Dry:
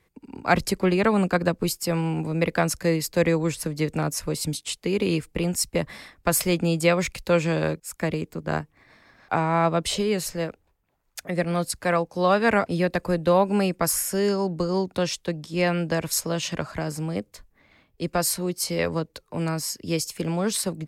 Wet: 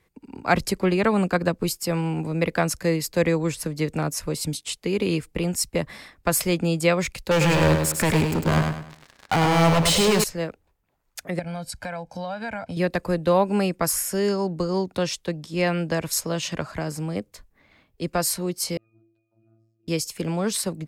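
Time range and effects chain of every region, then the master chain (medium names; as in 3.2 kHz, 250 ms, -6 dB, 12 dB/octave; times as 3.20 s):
7.31–10.24 s: waveshaping leveller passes 5 + compression 1.5:1, threshold -32 dBFS + feedback delay 102 ms, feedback 34%, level -4.5 dB
11.39–12.77 s: treble shelf 11 kHz -12 dB + comb 1.3 ms, depth 84% + compression 5:1, threshold -29 dBFS
18.77–19.88 s: compression, threshold -37 dBFS + pitch-class resonator D#, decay 0.76 s + robot voice 112 Hz
whole clip: none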